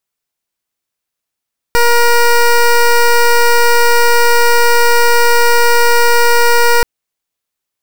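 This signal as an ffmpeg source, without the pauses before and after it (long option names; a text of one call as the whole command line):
ffmpeg -f lavfi -i "aevalsrc='0.398*(2*lt(mod(474*t,1),0.14)-1)':duration=5.08:sample_rate=44100" out.wav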